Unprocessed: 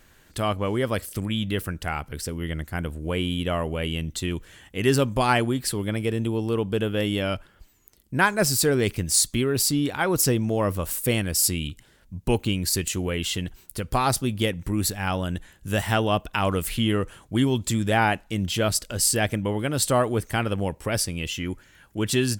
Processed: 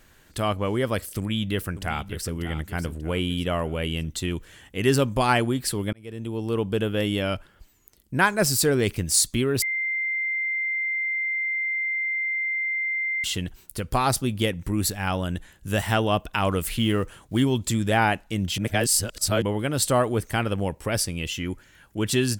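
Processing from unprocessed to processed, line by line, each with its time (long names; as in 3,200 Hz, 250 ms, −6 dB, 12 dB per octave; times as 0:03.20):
0:01.17–0:02.34: delay throw 590 ms, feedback 40%, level −11.5 dB
0:05.93–0:06.60: fade in
0:09.62–0:13.24: beep over 2,090 Hz −23.5 dBFS
0:16.78–0:17.44: one scale factor per block 7 bits
0:18.58–0:19.42: reverse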